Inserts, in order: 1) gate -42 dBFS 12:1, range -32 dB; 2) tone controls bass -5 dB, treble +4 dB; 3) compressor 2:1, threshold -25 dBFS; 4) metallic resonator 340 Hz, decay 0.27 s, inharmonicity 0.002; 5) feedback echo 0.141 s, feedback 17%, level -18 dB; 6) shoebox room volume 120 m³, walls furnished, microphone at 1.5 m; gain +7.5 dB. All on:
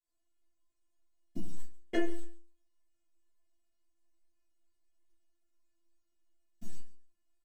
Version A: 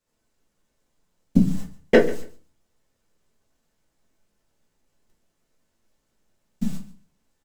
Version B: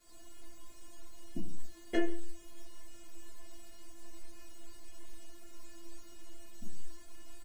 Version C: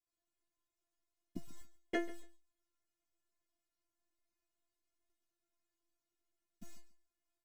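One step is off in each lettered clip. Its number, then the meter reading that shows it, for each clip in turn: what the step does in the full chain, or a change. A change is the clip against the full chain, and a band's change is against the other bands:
4, 125 Hz band +6.0 dB; 1, momentary loudness spread change -3 LU; 6, crest factor change +10.5 dB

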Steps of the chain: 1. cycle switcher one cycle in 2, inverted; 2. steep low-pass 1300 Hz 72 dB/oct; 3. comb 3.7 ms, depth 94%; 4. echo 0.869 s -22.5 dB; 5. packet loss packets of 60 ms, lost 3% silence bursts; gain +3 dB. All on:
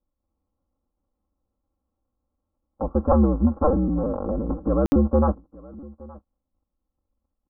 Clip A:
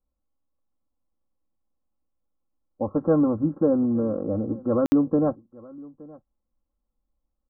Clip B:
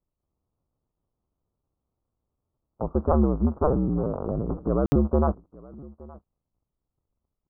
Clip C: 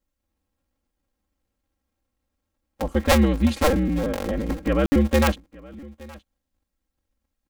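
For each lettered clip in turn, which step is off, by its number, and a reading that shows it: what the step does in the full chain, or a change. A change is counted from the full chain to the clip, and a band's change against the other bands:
1, 1 kHz band -6.5 dB; 3, 125 Hz band +2.0 dB; 2, momentary loudness spread change -4 LU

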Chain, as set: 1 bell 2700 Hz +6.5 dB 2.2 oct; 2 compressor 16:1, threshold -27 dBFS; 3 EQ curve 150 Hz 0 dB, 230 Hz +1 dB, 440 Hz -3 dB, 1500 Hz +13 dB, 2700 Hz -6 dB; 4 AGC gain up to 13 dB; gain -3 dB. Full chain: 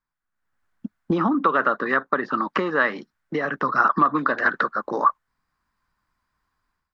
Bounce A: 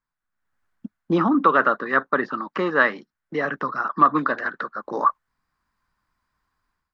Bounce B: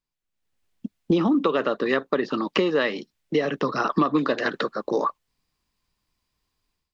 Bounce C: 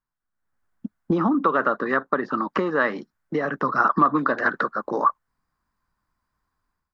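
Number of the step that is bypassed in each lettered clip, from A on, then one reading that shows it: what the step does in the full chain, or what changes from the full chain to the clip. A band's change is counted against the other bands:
2, mean gain reduction 5.5 dB; 3, 1 kHz band -9.5 dB; 1, 4 kHz band -5.0 dB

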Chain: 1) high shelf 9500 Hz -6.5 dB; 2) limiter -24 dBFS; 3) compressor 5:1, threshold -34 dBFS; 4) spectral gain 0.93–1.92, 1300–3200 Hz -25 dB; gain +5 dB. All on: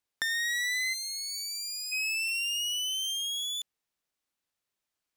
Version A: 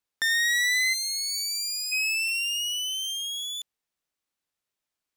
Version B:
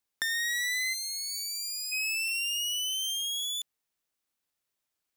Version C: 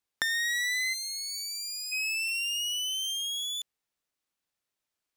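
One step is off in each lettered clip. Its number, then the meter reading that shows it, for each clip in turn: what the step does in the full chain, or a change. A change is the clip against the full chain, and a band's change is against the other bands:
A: 3, momentary loudness spread change +3 LU; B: 1, momentary loudness spread change -1 LU; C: 2, crest factor change +5.5 dB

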